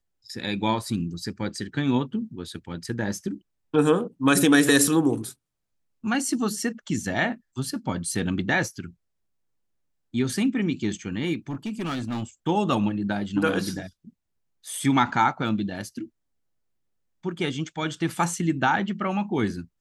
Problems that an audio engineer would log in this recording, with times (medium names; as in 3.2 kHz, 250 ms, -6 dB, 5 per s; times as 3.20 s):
11.49–12.24 s: clipped -25.5 dBFS